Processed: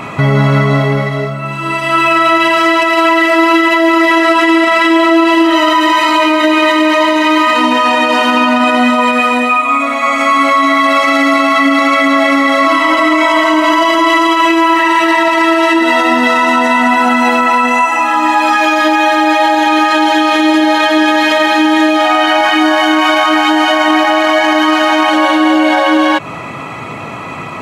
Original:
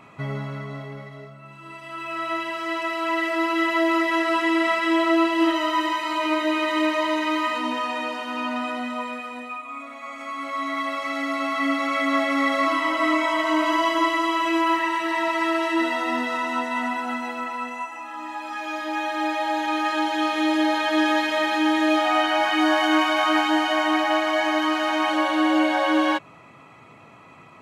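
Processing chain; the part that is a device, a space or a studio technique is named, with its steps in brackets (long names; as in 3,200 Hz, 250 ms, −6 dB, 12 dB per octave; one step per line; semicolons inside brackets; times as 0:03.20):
loud club master (downward compressor 2.5 to 1, threshold −25 dBFS, peak gain reduction 7 dB; hard clipping −15.5 dBFS, distortion −55 dB; boost into a limiter +25 dB)
level −1 dB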